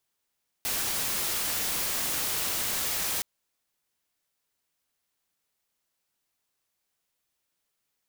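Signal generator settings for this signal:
noise white, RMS −29.5 dBFS 2.57 s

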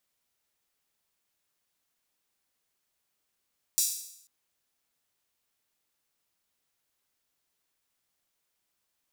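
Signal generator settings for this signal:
open synth hi-hat length 0.49 s, high-pass 5,900 Hz, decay 0.73 s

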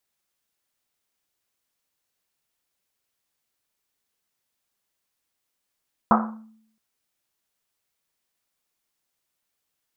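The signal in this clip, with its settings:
drum after Risset length 0.67 s, pitch 220 Hz, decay 0.73 s, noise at 1,000 Hz, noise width 700 Hz, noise 50%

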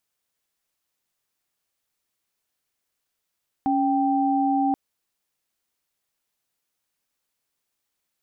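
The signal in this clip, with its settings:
held notes C#4/G5 sine, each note −21.5 dBFS 1.08 s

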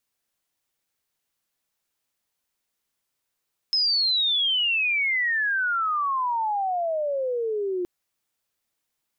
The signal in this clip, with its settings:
glide logarithmic 5,200 Hz → 350 Hz −19 dBFS → −24 dBFS 4.12 s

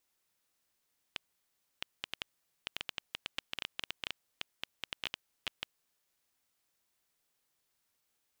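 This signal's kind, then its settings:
Geiger counter clicks 7.4 per second −17.5 dBFS 4.67 s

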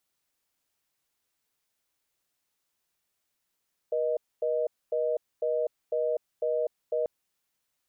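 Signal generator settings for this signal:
call progress tone reorder tone, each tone −27.5 dBFS 3.14 s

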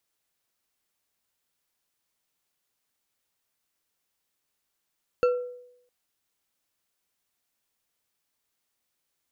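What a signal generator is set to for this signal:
struck glass bar, length 0.66 s, lowest mode 493 Hz, decay 0.77 s, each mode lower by 9 dB, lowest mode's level −16.5 dB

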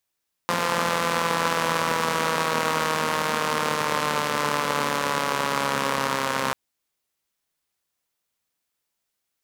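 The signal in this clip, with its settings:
pulse-train model of a four-cylinder engine, changing speed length 6.04 s, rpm 5,200, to 4,000, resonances 240/510/980 Hz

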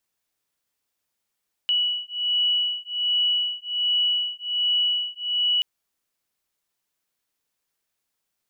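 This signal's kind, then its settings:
two tones that beat 2,940 Hz, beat 1.3 Hz, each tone −24 dBFS 3.93 s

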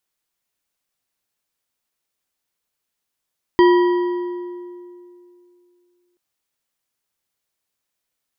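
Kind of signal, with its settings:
struck metal bar, length 2.58 s, lowest mode 354 Hz, decay 2.66 s, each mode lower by 7 dB, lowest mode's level −8 dB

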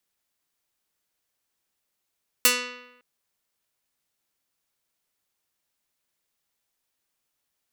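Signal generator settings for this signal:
Karplus-Strong string B3, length 0.56 s, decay 0.95 s, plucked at 0.31, medium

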